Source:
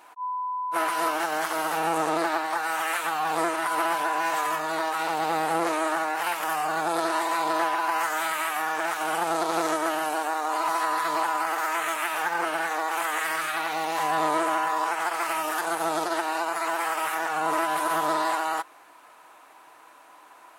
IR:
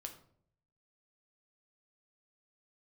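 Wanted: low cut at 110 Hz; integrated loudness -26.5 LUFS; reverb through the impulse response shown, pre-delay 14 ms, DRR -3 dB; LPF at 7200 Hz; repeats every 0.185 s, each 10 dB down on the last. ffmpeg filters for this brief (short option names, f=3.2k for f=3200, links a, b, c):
-filter_complex "[0:a]highpass=110,lowpass=7.2k,aecho=1:1:185|370|555|740:0.316|0.101|0.0324|0.0104,asplit=2[a][b];[1:a]atrim=start_sample=2205,adelay=14[c];[b][c]afir=irnorm=-1:irlink=0,volume=7dB[d];[a][d]amix=inputs=2:normalize=0,volume=-8dB"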